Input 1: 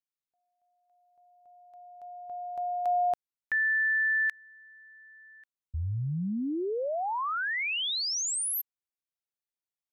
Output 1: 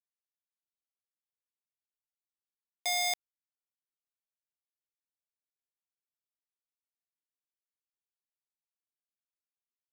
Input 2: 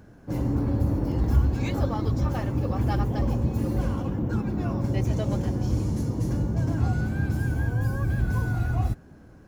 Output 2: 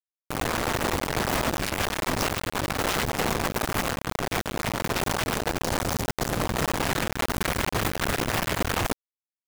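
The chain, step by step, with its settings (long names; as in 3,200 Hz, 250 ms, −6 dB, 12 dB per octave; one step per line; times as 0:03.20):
wrap-around overflow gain 19.5 dB
bit reduction 4 bits
level −3.5 dB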